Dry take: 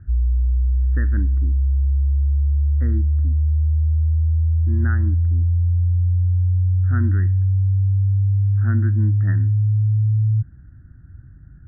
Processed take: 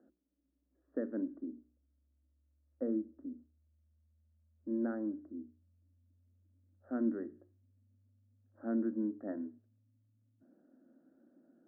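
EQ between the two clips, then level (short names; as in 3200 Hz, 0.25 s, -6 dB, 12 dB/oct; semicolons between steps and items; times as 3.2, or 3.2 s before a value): elliptic high-pass 240 Hz, stop band 50 dB; synth low-pass 580 Hz, resonance Q 4.9; notches 60/120/180/240/300/360/420 Hz; -3.5 dB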